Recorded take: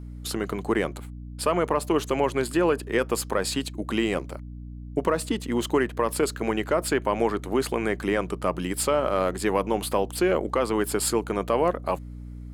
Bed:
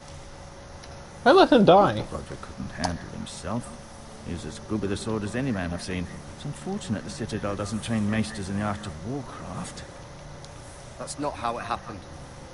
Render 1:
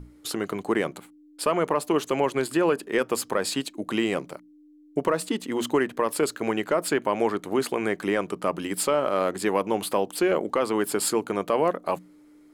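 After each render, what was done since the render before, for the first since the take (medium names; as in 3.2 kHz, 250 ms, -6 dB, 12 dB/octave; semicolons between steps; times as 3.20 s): hum notches 60/120/180/240 Hz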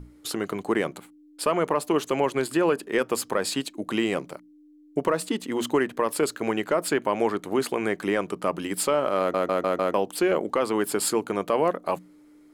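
9.19 s: stutter in place 0.15 s, 5 plays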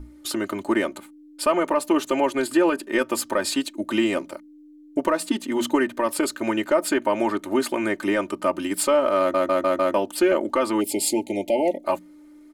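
10.80–11.85 s: spectral selection erased 900–1900 Hz; comb 3.3 ms, depth 91%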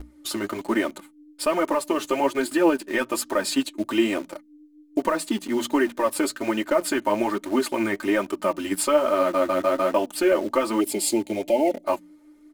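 flange 1.2 Hz, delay 2.6 ms, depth 8.2 ms, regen +24%; in parallel at -8.5 dB: bit crusher 6-bit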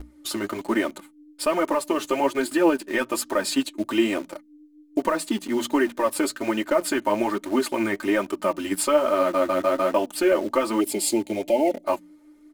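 no audible change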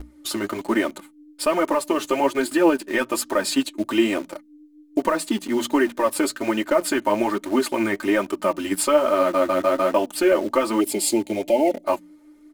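trim +2 dB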